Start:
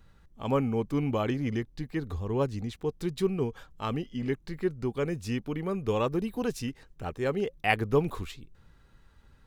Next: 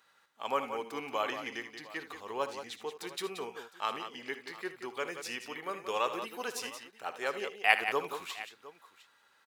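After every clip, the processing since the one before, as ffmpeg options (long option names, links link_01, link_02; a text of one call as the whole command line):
ffmpeg -i in.wav -af "highpass=830,aecho=1:1:59|77|178|708:0.168|0.2|0.335|0.119,volume=2.5dB" out.wav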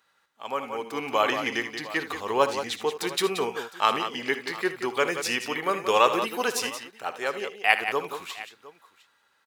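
ffmpeg -i in.wav -af "lowshelf=frequency=150:gain=4,dynaudnorm=framelen=290:gausssize=7:maxgain=13.5dB,volume=-1dB" out.wav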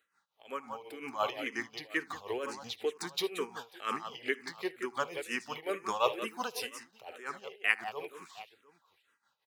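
ffmpeg -i in.wav -filter_complex "[0:a]tremolo=f=5.6:d=0.75,asplit=2[link_01][link_02];[link_02]afreqshift=-2.1[link_03];[link_01][link_03]amix=inputs=2:normalize=1,volume=-4dB" out.wav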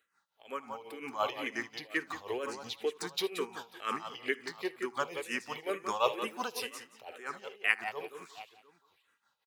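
ffmpeg -i in.wav -af "aecho=1:1:176:0.178" out.wav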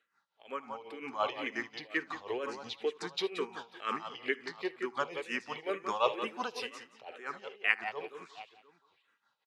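ffmpeg -i in.wav -af "highpass=110,lowpass=4900" out.wav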